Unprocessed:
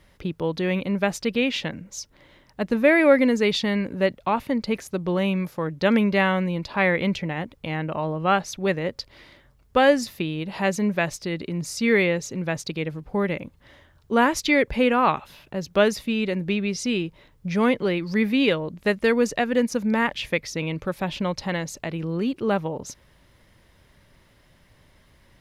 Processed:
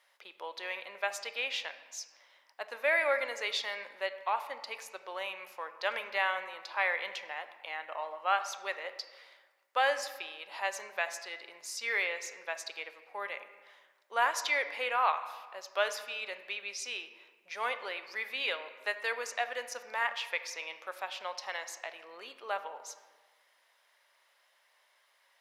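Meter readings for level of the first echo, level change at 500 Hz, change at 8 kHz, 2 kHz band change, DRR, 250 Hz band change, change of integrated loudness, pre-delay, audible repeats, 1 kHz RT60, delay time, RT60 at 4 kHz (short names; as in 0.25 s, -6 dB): none, -15.0 dB, -7.0 dB, -6.5 dB, 9.5 dB, -38.0 dB, -11.0 dB, 4 ms, none, 1.3 s, none, 0.90 s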